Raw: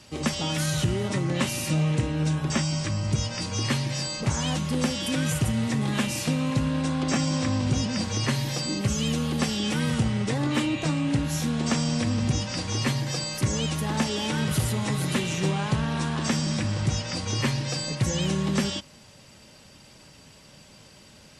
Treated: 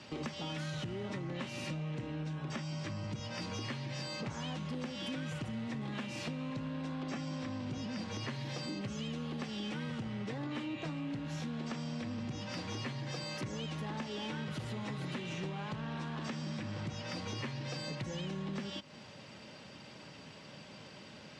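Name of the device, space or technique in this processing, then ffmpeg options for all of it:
AM radio: -af "highpass=130,lowpass=3.9k,acompressor=threshold=-38dB:ratio=6,asoftclip=type=tanh:threshold=-31.5dB,volume=1.5dB"

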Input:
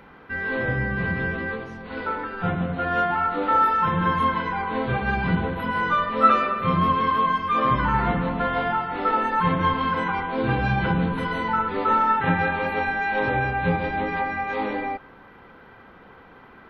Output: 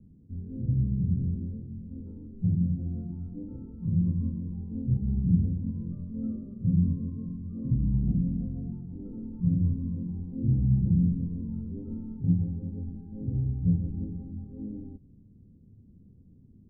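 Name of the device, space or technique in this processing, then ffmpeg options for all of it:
the neighbour's flat through the wall: -af "lowpass=f=230:w=0.5412,lowpass=f=230:w=1.3066,equalizer=f=97:t=o:w=0.52:g=7"

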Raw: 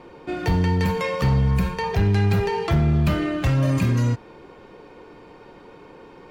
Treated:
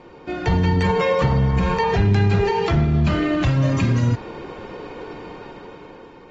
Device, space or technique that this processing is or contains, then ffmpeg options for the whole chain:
low-bitrate web radio: -filter_complex "[0:a]asettb=1/sr,asplit=3[a][b][c];[a]atrim=end=0.864[d];[b]atrim=start=0.86:end=1.88,asetpts=PTS-STARTPTS,afade=t=in:d=0.004:c=qsin,afade=t=out:st=1.016:d=0.004:c=qsin,equalizer=f=610:t=o:w=2.3:g=5.5[e];[c]atrim=start=1.876[f];[d][e]acrossfade=d=0.004:c1=hsin:c2=qsin[g];[g][f]acrossfade=d=0.004:c1=qsin:c2=hsin,dynaudnorm=f=340:g=7:m=13dB,alimiter=limit=-12.5dB:level=0:latency=1:release=35" -ar 48000 -c:a aac -b:a 24k

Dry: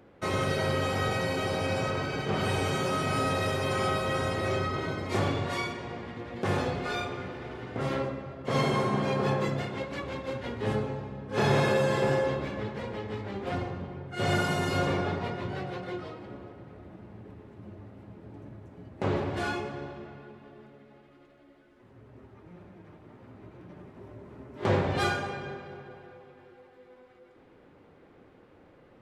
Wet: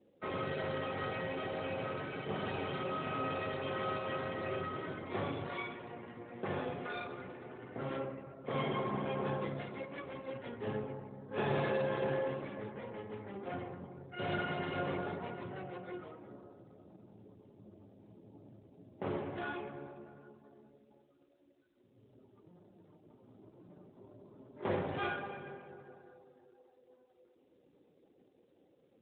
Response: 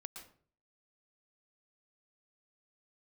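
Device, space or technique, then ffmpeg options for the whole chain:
mobile call with aggressive noise cancelling: -af "highpass=f=150:p=1,afftdn=nr=17:nf=-53,volume=-7dB" -ar 8000 -c:a libopencore_amrnb -b:a 12200

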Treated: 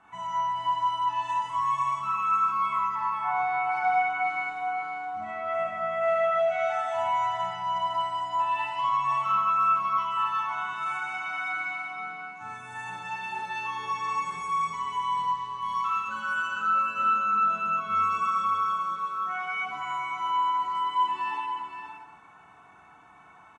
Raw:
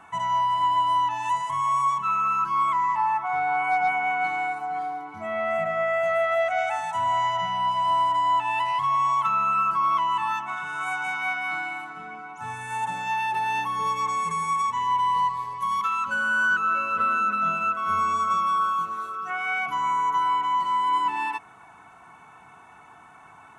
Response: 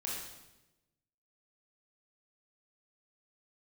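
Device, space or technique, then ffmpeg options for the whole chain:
bathroom: -filter_complex "[1:a]atrim=start_sample=2205[a];[0:a][a]afir=irnorm=-1:irlink=0,lowpass=6.7k,aecho=1:1:518:0.398,volume=-6dB"

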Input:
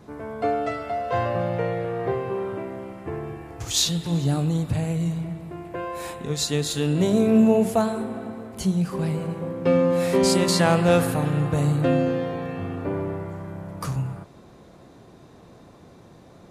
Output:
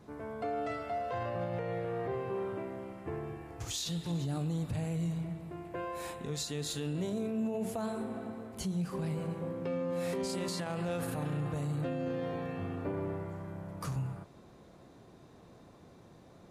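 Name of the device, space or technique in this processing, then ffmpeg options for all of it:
stacked limiters: -af "alimiter=limit=-12dB:level=0:latency=1,alimiter=limit=-15.5dB:level=0:latency=1:release=359,alimiter=limit=-20dB:level=0:latency=1:release=29,volume=-7.5dB"

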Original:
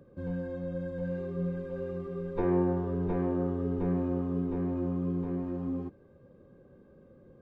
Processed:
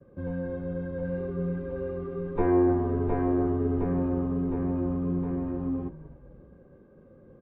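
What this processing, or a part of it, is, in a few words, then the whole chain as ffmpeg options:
hearing-loss simulation: -filter_complex "[0:a]bandreject=f=60:t=h:w=6,bandreject=f=120:t=h:w=6,bandreject=f=180:t=h:w=6,bandreject=f=240:t=h:w=6,bandreject=f=300:t=h:w=6,bandreject=f=360:t=h:w=6,bandreject=f=420:t=h:w=6,bandreject=f=480:t=h:w=6,bandreject=f=540:t=h:w=6,asettb=1/sr,asplit=3[a][b][c];[a]atrim=end=2.344[d];[b]atrim=start=2.34:end=3.84,asetpts=PTS-STARTPTS,afade=t=in:d=0.004:c=qsin,afade=t=out:st=1.496:d=0.004:c=qsin,asplit=2[e][f];[f]adelay=14,volume=-3dB[g];[e][g]amix=inputs=2:normalize=0,atrim=end_sample=66150[h];[c]atrim=start=3.836[i];[d][h]acrossfade=d=0.004:c1=hsin:c2=qsin[j];[j][i]acrossfade=d=0.004:c1=qsin:c2=hsin,lowpass=2.4k,agate=range=-33dB:threshold=-55dB:ratio=3:detection=peak,asplit=5[k][l][m][n][o];[l]adelay=260,afreqshift=-110,volume=-16dB[p];[m]adelay=520,afreqshift=-220,volume=-22dB[q];[n]adelay=780,afreqshift=-330,volume=-28dB[r];[o]adelay=1040,afreqshift=-440,volume=-34.1dB[s];[k][p][q][r][s]amix=inputs=5:normalize=0,volume=4dB"

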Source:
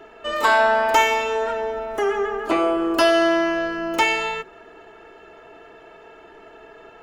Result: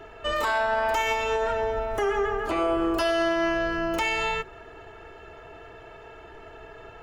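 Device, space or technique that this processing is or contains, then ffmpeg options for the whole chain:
car stereo with a boomy subwoofer: -af "lowshelf=f=150:t=q:w=1.5:g=10.5,alimiter=limit=-17dB:level=0:latency=1:release=111"

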